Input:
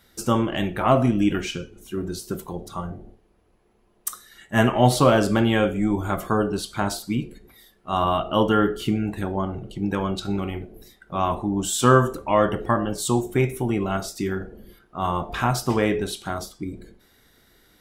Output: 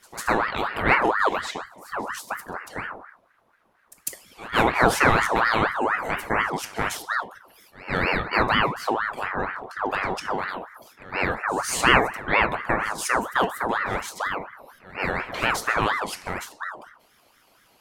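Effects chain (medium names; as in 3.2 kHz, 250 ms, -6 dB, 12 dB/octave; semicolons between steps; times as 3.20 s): pre-echo 150 ms -19 dB; ring modulator with a swept carrier 1.1 kHz, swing 50%, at 4.2 Hz; trim +1 dB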